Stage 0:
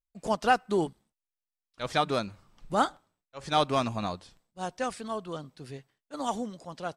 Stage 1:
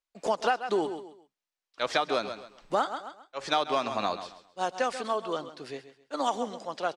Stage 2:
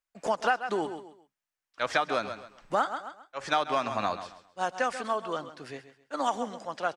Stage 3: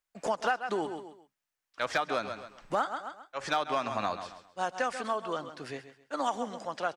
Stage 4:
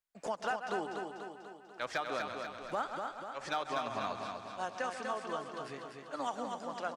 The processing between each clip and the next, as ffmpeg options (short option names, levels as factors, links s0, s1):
-filter_complex "[0:a]acrossover=split=290 7200:gain=0.112 1 0.2[s0][s1][s2];[s0][s1][s2]amix=inputs=3:normalize=0,aecho=1:1:133|266|399:0.211|0.0592|0.0166,acompressor=threshold=0.0316:ratio=6,volume=2.24"
-af "equalizer=f=100:t=o:w=0.67:g=6,equalizer=f=400:t=o:w=0.67:g=-4,equalizer=f=1600:t=o:w=0.67:g=4,equalizer=f=4000:t=o:w=0.67:g=-5"
-filter_complex "[0:a]asplit=2[s0][s1];[s1]acompressor=threshold=0.0178:ratio=6,volume=1.19[s2];[s0][s2]amix=inputs=2:normalize=0,asoftclip=type=hard:threshold=0.224,volume=0.562"
-af "aecho=1:1:245|490|735|980|1225|1470|1715:0.562|0.315|0.176|0.0988|0.0553|0.031|0.0173,volume=0.473"